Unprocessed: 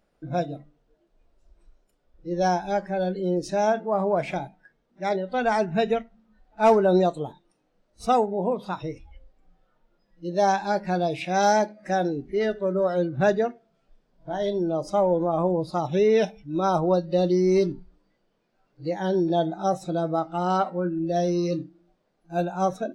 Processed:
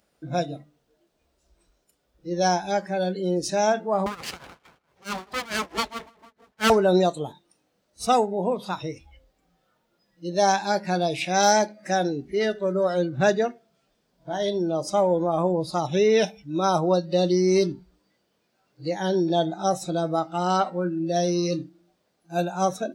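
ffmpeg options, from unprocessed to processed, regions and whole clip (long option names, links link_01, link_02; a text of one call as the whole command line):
ffmpeg -i in.wav -filter_complex "[0:a]asettb=1/sr,asplit=3[link_01][link_02][link_03];[link_01]atrim=end=4.064[link_04];[link_02]atrim=start=4.06:end=6.7,asetpts=PTS-STARTPTS,afade=type=in:duration=0.004:curve=qsin,afade=type=out:start_time=2.636:duration=0.004:curve=qsin,asplit=2[link_05][link_06];[link_06]adelay=159,lowpass=frequency=2500:poles=1,volume=-16dB,asplit=2[link_07][link_08];[link_08]adelay=159,lowpass=frequency=2500:poles=1,volume=0.45,asplit=2[link_09][link_10];[link_10]adelay=159,lowpass=frequency=2500:poles=1,volume=0.45,asplit=2[link_11][link_12];[link_12]adelay=159,lowpass=frequency=2500:poles=1,volume=0.45[link_13];[link_05][link_07][link_09][link_11][link_13]amix=inputs=5:normalize=0,atrim=end_sample=116424,aeval=exprs='abs(val(0))':channel_layout=same,tremolo=f=4.6:d=0.89[link_14];[link_03]atrim=start=6.696[link_15];[link_04][link_14]acrossfade=duration=0.004:curve1=hsin:curve2=qsin[link_16];[link_16][link_15]acrossfade=duration=0.004:curve1=qsin:curve2=hsin,highpass=frequency=50:width=0.5412,highpass=frequency=50:width=1.3066,highshelf=frequency=3100:gain=11.5" out.wav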